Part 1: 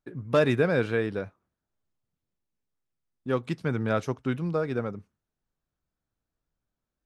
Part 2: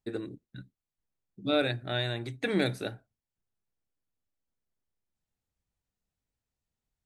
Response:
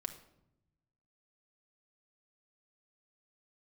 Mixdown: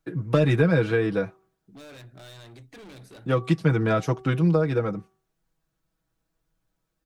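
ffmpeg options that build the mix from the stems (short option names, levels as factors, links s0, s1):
-filter_complex "[0:a]bandreject=f=381:t=h:w=4,bandreject=f=762:t=h:w=4,bandreject=f=1143:t=h:w=4,acontrast=87,aecho=1:1:6.2:0.78,volume=0.841[s0];[1:a]acompressor=threshold=0.0398:ratio=2.5,asoftclip=type=hard:threshold=0.0133,adelay=300,volume=0.501[s1];[s0][s1]amix=inputs=2:normalize=0,acrossover=split=230[s2][s3];[s3]acompressor=threshold=0.0891:ratio=4[s4];[s2][s4]amix=inputs=2:normalize=0"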